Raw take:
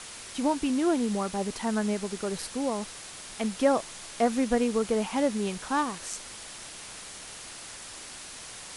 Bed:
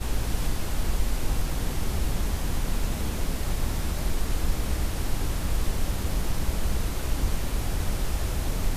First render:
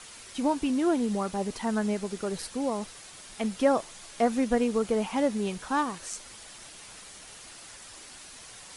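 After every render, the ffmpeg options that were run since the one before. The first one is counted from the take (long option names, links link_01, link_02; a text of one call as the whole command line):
ffmpeg -i in.wav -af "afftdn=noise_reduction=6:noise_floor=-44" out.wav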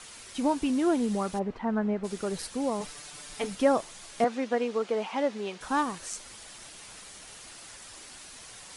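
ffmpeg -i in.wav -filter_complex "[0:a]asplit=3[link_01][link_02][link_03];[link_01]afade=type=out:start_time=1.38:duration=0.02[link_04];[link_02]lowpass=1700,afade=type=in:start_time=1.38:duration=0.02,afade=type=out:start_time=2.03:duration=0.02[link_05];[link_03]afade=type=in:start_time=2.03:duration=0.02[link_06];[link_04][link_05][link_06]amix=inputs=3:normalize=0,asettb=1/sr,asplit=3[link_07][link_08][link_09];[link_07]atrim=end=2.804[link_10];[link_08]atrim=start=2.8:end=3.55,asetpts=PTS-STARTPTS,afade=type=in:duration=0.004:curve=qsin,afade=type=out:start_time=0.746:duration=0.004:curve=qsin,aecho=1:1:6.8:0.85,atrim=end_sample=33075[link_11];[link_09]atrim=start=3.546[link_12];[link_10][link_11]acrossfade=duration=0.004:curve1=hsin:curve2=qsin[link_13];[link_13][link_12]acrossfade=duration=0.004:curve1=qsin:curve2=hsin,asettb=1/sr,asplit=3[link_14][link_15][link_16];[link_14]atrim=end=4.244[link_17];[link_15]atrim=start=4.24:end=5.61,asetpts=PTS-STARTPTS,afade=type=in:duration=0.004:curve=qsin,afade=type=out:start_time=1.366:duration=0.004:curve=qsin,highpass=350,lowpass=4800[link_18];[link_16]atrim=start=5.606[link_19];[link_17][link_18]acrossfade=duration=0.004:curve1=hsin:curve2=qsin[link_20];[link_20][link_19]acrossfade=duration=0.004:curve1=qsin:curve2=hsin" out.wav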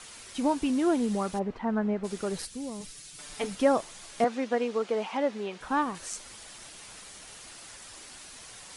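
ffmpeg -i in.wav -filter_complex "[0:a]asettb=1/sr,asplit=3[link_01][link_02][link_03];[link_01]atrim=end=2.454[link_04];[link_02]atrim=start=2.45:end=3.19,asetpts=PTS-STARTPTS,afade=type=in:duration=0.004:curve=qsin,afade=type=out:start_time=0.736:duration=0.004:curve=qsin,equalizer=frequency=840:width=0.49:gain=-14.5[link_05];[link_03]atrim=start=3.186[link_06];[link_04][link_05]acrossfade=duration=0.004:curve1=hsin:curve2=qsin[link_07];[link_07][link_06]acrossfade=duration=0.004:curve1=qsin:curve2=hsin,asettb=1/sr,asplit=3[link_08][link_09][link_10];[link_08]atrim=end=5.174[link_11];[link_09]atrim=start=5.17:end=5.95,asetpts=PTS-STARTPTS,afade=type=in:duration=0.004:curve=qsin,afade=type=out:start_time=0.776:duration=0.004:curve=qsin,acrossover=split=3400[link_12][link_13];[link_13]acompressor=threshold=-53dB:ratio=4:attack=1:release=60[link_14];[link_12][link_14]amix=inputs=2:normalize=0[link_15];[link_10]atrim=start=5.946[link_16];[link_11][link_15]acrossfade=duration=0.004:curve1=hsin:curve2=qsin[link_17];[link_17][link_16]acrossfade=duration=0.004:curve1=qsin:curve2=hsin" out.wav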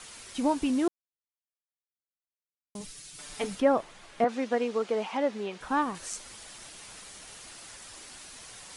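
ffmpeg -i in.wav -filter_complex "[0:a]asettb=1/sr,asplit=3[link_01][link_02][link_03];[link_01]atrim=end=3.604[link_04];[link_02]atrim=start=3.6:end=4.29,asetpts=PTS-STARTPTS,afade=type=in:duration=0.004:curve=qsin,afade=type=out:start_time=0.686:duration=0.004:curve=qsin,bass=frequency=250:gain=-1,treble=frequency=4000:gain=-13[link_05];[link_03]atrim=start=4.286[link_06];[link_04][link_05]acrossfade=duration=0.004:curve1=hsin:curve2=qsin[link_07];[link_07][link_06]acrossfade=duration=0.004:curve1=qsin:curve2=hsin,asplit=3[link_08][link_09][link_10];[link_08]atrim=end=0.88,asetpts=PTS-STARTPTS,afade=type=out:start_time=0.876:duration=0.004:curve=hsin[link_11];[link_09]atrim=start=0.88:end=2.75,asetpts=PTS-STARTPTS,volume=0[link_12];[link_10]atrim=start=2.75,asetpts=PTS-STARTPTS,afade=type=in:duration=0.004:curve=hsin[link_13];[link_11][link_12][link_13]concat=n=3:v=0:a=1" out.wav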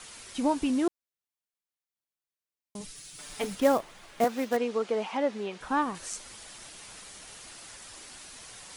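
ffmpeg -i in.wav -filter_complex "[0:a]asettb=1/sr,asplit=3[link_01][link_02][link_03];[link_01]atrim=end=2.954[link_04];[link_02]atrim=start=2.95:end=4.57,asetpts=PTS-STARTPTS,afade=type=in:duration=0.004:curve=qsin,afade=type=out:start_time=1.616:duration=0.004:curve=qsin,acrusher=bits=4:mode=log:mix=0:aa=0.000001[link_05];[link_03]atrim=start=4.566[link_06];[link_04][link_05]acrossfade=duration=0.004:curve1=hsin:curve2=qsin[link_07];[link_07][link_06]acrossfade=duration=0.004:curve1=qsin:curve2=hsin" out.wav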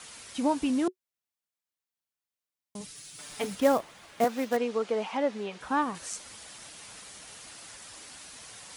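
ffmpeg -i in.wav -af "highpass=56,bandreject=frequency=370:width=12" out.wav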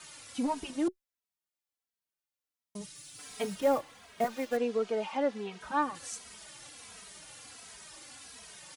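ffmpeg -i in.wav -filter_complex "[0:a]asoftclip=type=tanh:threshold=-16dB,asplit=2[link_01][link_02];[link_02]adelay=2.8,afreqshift=-1.4[link_03];[link_01][link_03]amix=inputs=2:normalize=1" out.wav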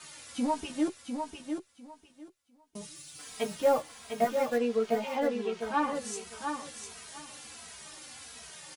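ffmpeg -i in.wav -filter_complex "[0:a]asplit=2[link_01][link_02];[link_02]adelay=13,volume=-4dB[link_03];[link_01][link_03]amix=inputs=2:normalize=0,aecho=1:1:701|1402|2103:0.501|0.0952|0.0181" out.wav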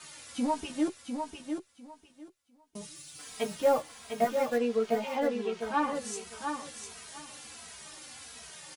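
ffmpeg -i in.wav -af anull out.wav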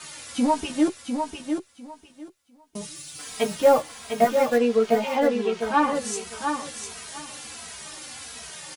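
ffmpeg -i in.wav -af "volume=8dB" out.wav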